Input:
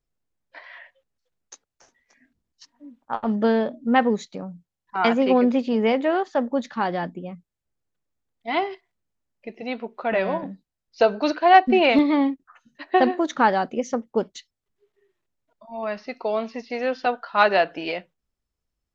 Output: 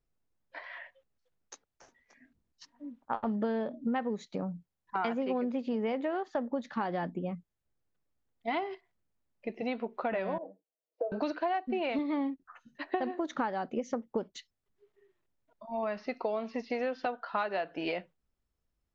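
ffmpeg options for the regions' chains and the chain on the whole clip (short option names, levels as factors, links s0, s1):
-filter_complex "[0:a]asettb=1/sr,asplit=3[s0][s1][s2];[s0]atrim=end=10.384[s3];[s1]atrim=start=10.38:end=11.12,asetpts=PTS-STARTPTS,afade=t=in:d=0.004:c=qsin,afade=t=out:st=0.736:d=0.004:c=qsin,acompressor=threshold=0.0398:ratio=4:attack=3.2:release=140:knee=1:detection=peak,asuperpass=centerf=540:order=4:qfactor=1.8,aecho=1:1:6.3:0.65,atrim=end_sample=32634[s4];[s2]atrim=start=11.116[s5];[s3][s4]acrossfade=d=0.004:c1=hsin:c2=qsin[s6];[s6][s5]acrossfade=d=0.004:c1=qsin:c2=hsin,highshelf=f=3300:g=-7.5,acompressor=threshold=0.0355:ratio=10"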